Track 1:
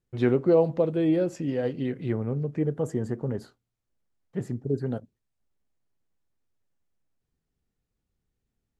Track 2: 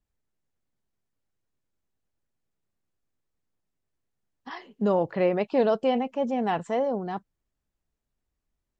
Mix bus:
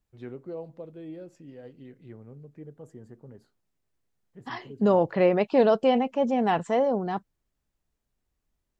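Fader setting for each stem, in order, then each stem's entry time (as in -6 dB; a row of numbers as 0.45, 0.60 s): -17.5, +2.5 dB; 0.00, 0.00 s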